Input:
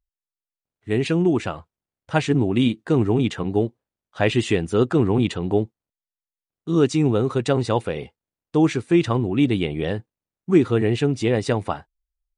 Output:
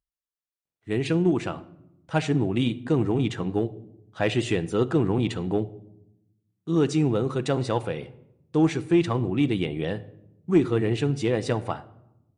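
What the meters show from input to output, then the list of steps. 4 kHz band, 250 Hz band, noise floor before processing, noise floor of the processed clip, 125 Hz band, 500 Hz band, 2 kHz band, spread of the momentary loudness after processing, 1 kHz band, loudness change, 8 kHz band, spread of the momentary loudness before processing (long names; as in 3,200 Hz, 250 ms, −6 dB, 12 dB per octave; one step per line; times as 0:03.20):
−4.0 dB, −3.5 dB, below −85 dBFS, below −85 dBFS, −3.5 dB, −4.5 dB, −4.5 dB, 12 LU, −4.0 dB, −4.0 dB, −4.0 dB, 10 LU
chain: high-pass filter 45 Hz 6 dB per octave
rectangular room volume 2,600 cubic metres, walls furnished, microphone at 0.68 metres
in parallel at −5 dB: asymmetric clip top −12 dBFS
on the sum: level −8 dB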